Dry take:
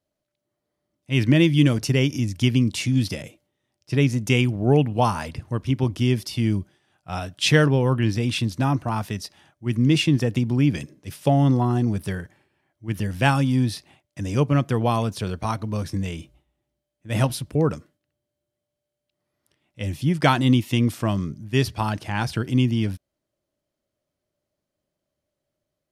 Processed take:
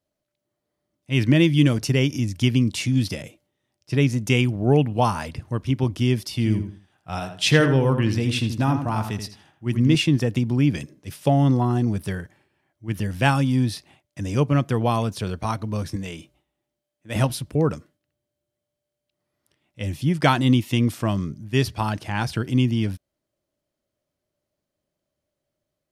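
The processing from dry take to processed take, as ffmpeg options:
-filter_complex "[0:a]asettb=1/sr,asplit=3[a][b][c];[a]atrim=end=6.324[d];[b]atrim=start=6.32:end=9.95,asetpts=PTS-STARTPTS,afade=t=in:d=0.004:c=qsin,afade=t=out:st=3.626:d=0.004:c=qsin,asplit=2[e][f];[f]adelay=82,lowpass=f=3k:p=1,volume=-7.5dB,asplit=2[g][h];[h]adelay=82,lowpass=f=3k:p=1,volume=0.28,asplit=2[i][j];[j]adelay=82,lowpass=f=3k:p=1,volume=0.28[k];[e][g][i][k]amix=inputs=4:normalize=0,atrim=end_sample=160083[l];[c]atrim=start=9.946[m];[d][l]acrossfade=d=0.004:c1=hsin:c2=qsin[n];[n][m]acrossfade=d=0.004:c1=qsin:c2=hsin,asettb=1/sr,asplit=3[o][p][q];[o]atrim=end=15.964[r];[p]atrim=start=15.96:end=17.16,asetpts=PTS-STARTPTS,afade=t=in:d=0.004:c=qsin,afade=t=out:st=1.196:d=0.004:c=qsin,highpass=f=230:p=1[s];[q]atrim=start=17.156[t];[r][s]acrossfade=d=0.004:c1=hsin:c2=qsin[u];[u][t]acrossfade=d=0.004:c1=qsin:c2=hsin"

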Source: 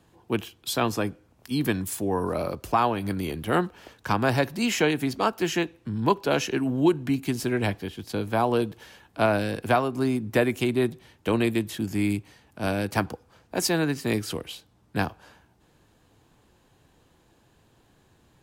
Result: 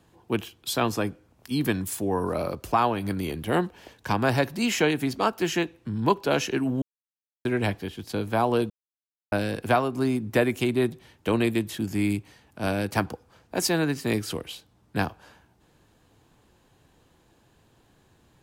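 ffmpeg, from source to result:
-filter_complex "[0:a]asettb=1/sr,asplit=3[a][b][c];[a]atrim=end=3.444[d];[b]atrim=start=3.44:end=4.18,asetpts=PTS-STARTPTS,afade=t=in:d=0.004:c=qsin,afade=t=out:st=0.736:d=0.004:c=qsin,equalizer=f=1.3k:w=6:g=-8.5[e];[c]atrim=start=4.176[f];[d][e]acrossfade=d=0.004:c1=hsin:c2=qsin[g];[g][f]acrossfade=d=0.004:c1=qsin:c2=hsin,asplit=5[h][i][j][k][l];[h]atrim=end=6.82,asetpts=PTS-STARTPTS,afade=t=out:st=6.816:d=0.004:c=hsin[m];[i]atrim=start=6.82:end=7.45,asetpts=PTS-STARTPTS,volume=0[n];[j]atrim=start=7.45:end=8.7,asetpts=PTS-STARTPTS,afade=t=in:d=0.004:c=hsin,afade=t=out:st=1.246:d=0.004:c=hsin[o];[k]atrim=start=8.7:end=9.32,asetpts=PTS-STARTPTS,volume=0[p];[l]atrim=start=9.32,asetpts=PTS-STARTPTS,afade=t=in:d=0.004:c=hsin[q];[m][n][o][p][q]concat=n=5:v=0:a=1"

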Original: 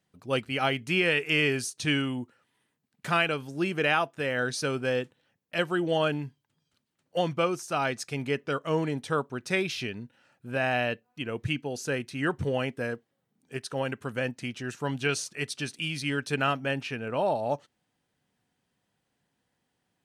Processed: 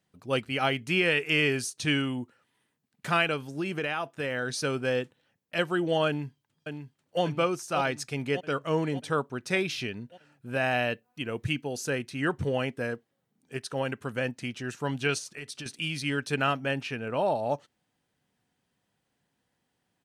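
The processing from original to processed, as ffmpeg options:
-filter_complex "[0:a]asettb=1/sr,asplit=3[a][b][c];[a]atrim=end=3.524[d];[b]atrim=start=3.52:end=4.5,asetpts=PTS-STARTPTS,afade=t=in:d=0.004:c=qsin,afade=t=out:st=0.976:d=0.004:c=qsin,acompressor=threshold=-26dB:ratio=6:attack=3.2:release=140:knee=1:detection=peak[e];[c]atrim=start=4.496[f];[d][e]acrossfade=d=0.004:c1=hsin:c2=qsin[g];[g][f]acrossfade=d=0.004:c1=qsin:c2=hsin,asplit=2[h][i];[i]afade=t=in:st=6.07:d=0.01,afade=t=out:st=7.22:d=0.01,aecho=0:1:590|1180|1770|2360|2950|3540|4130|4720:0.446684|0.26801|0.160806|0.0964837|0.0578902|0.0347341|0.0208405|0.0125043[j];[h][j]amix=inputs=2:normalize=0,asettb=1/sr,asplit=3[k][l][m];[k]atrim=end=10.514[n];[l]atrim=start=10.51:end=11.9,asetpts=PTS-STARTPTS,afade=t=in:d=0.004:c=qsin,afade=t=out:st=1.386:d=0.004:c=qsin,highshelf=f=8.2k:g=5.5[o];[m]atrim=start=11.896[p];[n][o]acrossfade=d=0.004:c1=hsin:c2=qsin[q];[q][p]acrossfade=d=0.004:c1=qsin:c2=hsin,asettb=1/sr,asplit=3[r][s][t];[r]atrim=end=15.184[u];[s]atrim=start=15.18:end=15.66,asetpts=PTS-STARTPTS,afade=t=in:d=0.004:c=qsin,afade=t=out:st=0.476:d=0.004:c=qsin,acompressor=threshold=-35dB:ratio=10:attack=3.2:release=140:knee=1:detection=peak[v];[t]atrim=start=15.656[w];[u][v]acrossfade=d=0.004:c1=hsin:c2=qsin[x];[x][w]acrossfade=d=0.004:c1=qsin:c2=hsin"

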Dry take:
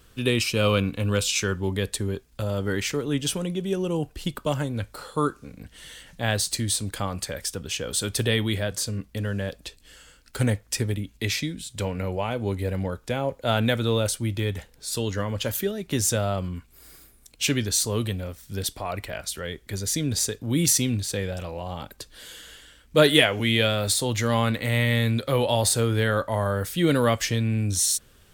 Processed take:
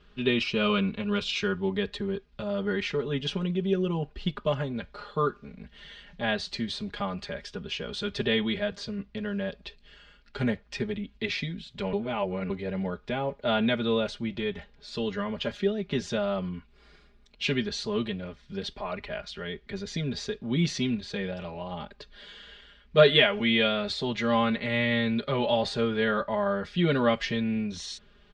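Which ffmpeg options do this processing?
-filter_complex "[0:a]asplit=3[a][b][c];[a]atrim=end=11.932[d];[b]atrim=start=11.928:end=12.502,asetpts=PTS-STARTPTS,areverse[e];[c]atrim=start=12.498[f];[d][e]acrossfade=d=0.004:c1=hsin:c2=hsin[g];[g][f]acrossfade=d=0.004:c1=hsin:c2=hsin,lowpass=f=4.1k:w=0.5412,lowpass=f=4.1k:w=1.3066,aecho=1:1:4.9:0.92,volume=-4.5dB"

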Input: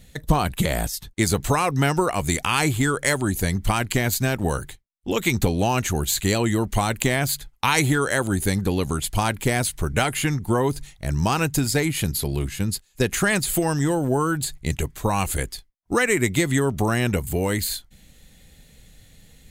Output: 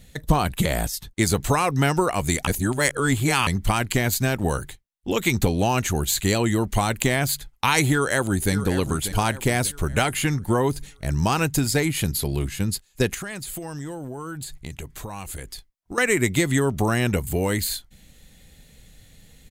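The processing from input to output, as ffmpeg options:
-filter_complex "[0:a]asplit=2[a][b];[b]afade=t=in:st=7.92:d=0.01,afade=t=out:st=8.53:d=0.01,aecho=0:1:590|1180|1770|2360|2950:0.266073|0.119733|0.0538797|0.0242459|0.0109106[c];[a][c]amix=inputs=2:normalize=0,asettb=1/sr,asplit=3[d][e][f];[d]atrim=end=13.144[g];[e]atrim=start=13.14:end=15.98,asetpts=PTS-STARTPTS,afade=t=in:d=0.004:c=qsin,afade=t=out:st=2.836:d=0.004:c=qsin,acompressor=threshold=-31dB:ratio=5:attack=3.2:release=140:knee=1:detection=peak[h];[f]atrim=start=15.976[i];[g][h]acrossfade=d=0.004:c1=hsin:c2=qsin[j];[j][i]acrossfade=d=0.004:c1=qsin:c2=hsin,asplit=3[k][l][m];[k]atrim=end=2.472[n];[l]atrim=start=2.468:end=3.472,asetpts=PTS-STARTPTS,areverse[o];[m]atrim=start=3.468[p];[n][o]acrossfade=d=0.004:c1=hsin:c2=hsin[q];[q][p]acrossfade=d=0.004:c1=hsin:c2=hsin"

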